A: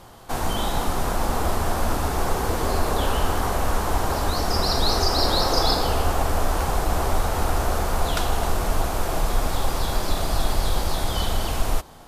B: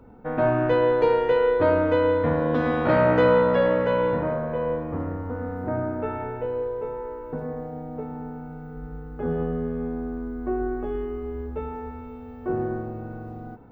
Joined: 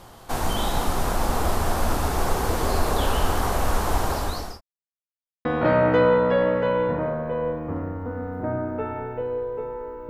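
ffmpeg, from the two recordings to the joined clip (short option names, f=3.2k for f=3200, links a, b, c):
-filter_complex "[0:a]apad=whole_dur=10.09,atrim=end=10.09,asplit=2[a][b];[a]atrim=end=4.61,asetpts=PTS-STARTPTS,afade=t=out:st=3.86:d=0.75:c=qsin[c];[b]atrim=start=4.61:end=5.45,asetpts=PTS-STARTPTS,volume=0[d];[1:a]atrim=start=2.69:end=7.33,asetpts=PTS-STARTPTS,afade=t=in:d=0.004:c=hsin[e];[c][d][e]concat=n=3:v=0:a=1"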